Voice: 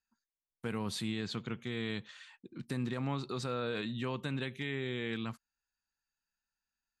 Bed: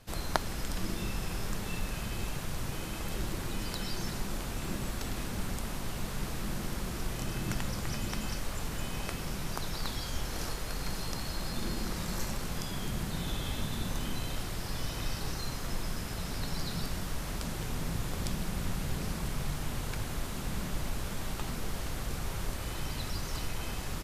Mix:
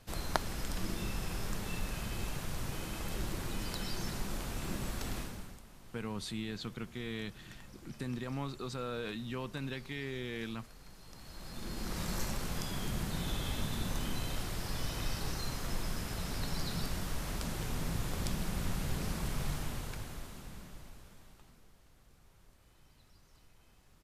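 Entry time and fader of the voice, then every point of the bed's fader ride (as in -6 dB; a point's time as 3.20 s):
5.30 s, -3.0 dB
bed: 5.17 s -2.5 dB
5.64 s -19 dB
10.99 s -19 dB
12.01 s -1.5 dB
19.54 s -1.5 dB
21.77 s -27.5 dB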